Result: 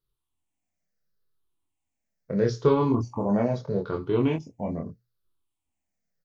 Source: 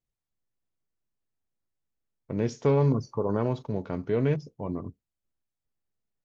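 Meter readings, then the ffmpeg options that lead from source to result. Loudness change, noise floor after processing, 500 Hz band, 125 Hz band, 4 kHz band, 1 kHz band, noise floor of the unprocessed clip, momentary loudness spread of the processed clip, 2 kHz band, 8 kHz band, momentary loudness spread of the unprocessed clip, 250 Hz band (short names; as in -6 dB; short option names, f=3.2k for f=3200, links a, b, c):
+2.0 dB, -83 dBFS, +2.5 dB, -1.5 dB, +5.0 dB, +4.0 dB, under -85 dBFS, 11 LU, +2.0 dB, n/a, 12 LU, +3.5 dB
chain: -filter_complex "[0:a]afftfilt=real='re*pow(10,13/40*sin(2*PI*(0.61*log(max(b,1)*sr/1024/100)/log(2)-(-0.77)*(pts-256)/sr)))':imag='im*pow(10,13/40*sin(2*PI*(0.61*log(max(b,1)*sr/1024/100)/log(2)-(-0.77)*(pts-256)/sr)))':win_size=1024:overlap=0.75,bandreject=f=60:t=h:w=6,bandreject=f=120:t=h:w=6,asplit=2[a][b];[b]adelay=25,volume=-3dB[c];[a][c]amix=inputs=2:normalize=0"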